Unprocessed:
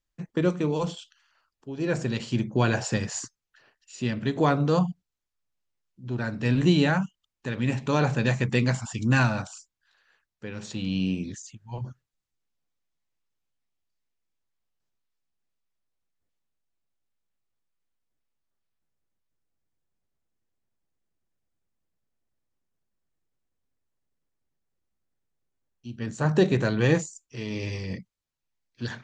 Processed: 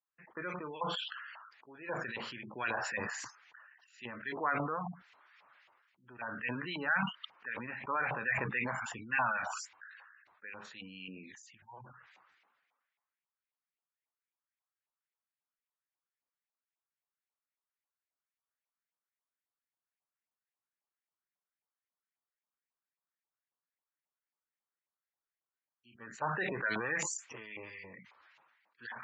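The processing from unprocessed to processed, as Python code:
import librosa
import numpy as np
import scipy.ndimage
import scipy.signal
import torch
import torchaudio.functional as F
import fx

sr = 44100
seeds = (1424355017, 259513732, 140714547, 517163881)

y = fx.filter_lfo_bandpass(x, sr, shape='saw_up', hz=3.7, low_hz=870.0, high_hz=2300.0, q=2.9)
y = fx.spec_gate(y, sr, threshold_db=-20, keep='strong')
y = fx.sustainer(y, sr, db_per_s=34.0)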